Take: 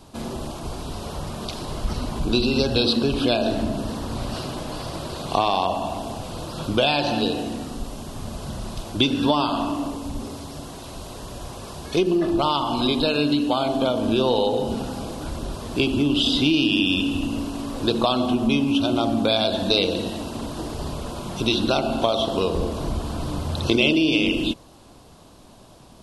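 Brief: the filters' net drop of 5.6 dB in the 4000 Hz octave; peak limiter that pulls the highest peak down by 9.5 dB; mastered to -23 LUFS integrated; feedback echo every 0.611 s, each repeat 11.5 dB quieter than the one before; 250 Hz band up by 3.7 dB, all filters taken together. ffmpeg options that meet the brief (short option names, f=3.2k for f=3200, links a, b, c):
-af "equalizer=f=250:t=o:g=4.5,equalizer=f=4k:t=o:g=-7,alimiter=limit=-13dB:level=0:latency=1,aecho=1:1:611|1222|1833:0.266|0.0718|0.0194,volume=1dB"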